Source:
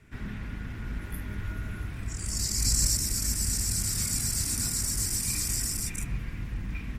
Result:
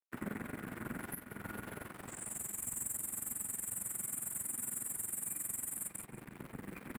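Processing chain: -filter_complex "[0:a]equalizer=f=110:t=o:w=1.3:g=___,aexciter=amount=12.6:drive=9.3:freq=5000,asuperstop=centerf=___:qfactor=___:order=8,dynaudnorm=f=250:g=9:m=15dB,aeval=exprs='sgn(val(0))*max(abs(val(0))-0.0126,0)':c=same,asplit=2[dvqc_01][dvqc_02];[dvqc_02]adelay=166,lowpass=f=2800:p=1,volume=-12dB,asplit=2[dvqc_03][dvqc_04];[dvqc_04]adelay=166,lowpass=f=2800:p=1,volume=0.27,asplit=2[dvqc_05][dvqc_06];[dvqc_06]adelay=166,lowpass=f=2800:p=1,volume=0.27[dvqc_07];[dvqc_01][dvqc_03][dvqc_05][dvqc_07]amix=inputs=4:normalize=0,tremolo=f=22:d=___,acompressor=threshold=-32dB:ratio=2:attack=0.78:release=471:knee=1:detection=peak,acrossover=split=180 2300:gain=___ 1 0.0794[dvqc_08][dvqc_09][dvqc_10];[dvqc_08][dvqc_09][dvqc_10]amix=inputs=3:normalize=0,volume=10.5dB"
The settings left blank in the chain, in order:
4, 4800, 0.93, 0.788, 0.0631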